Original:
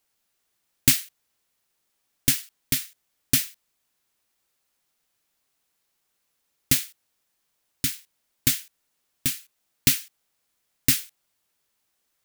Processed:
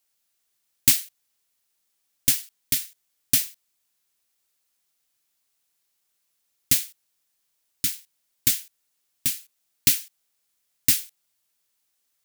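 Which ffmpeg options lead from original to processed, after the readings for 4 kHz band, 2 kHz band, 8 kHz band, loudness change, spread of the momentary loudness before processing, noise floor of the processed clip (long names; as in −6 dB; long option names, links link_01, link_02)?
−0.5 dB, −3.0 dB, +1.5 dB, +1.0 dB, 10 LU, −74 dBFS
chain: -af "highshelf=frequency=2600:gain=8.5,volume=-6.5dB"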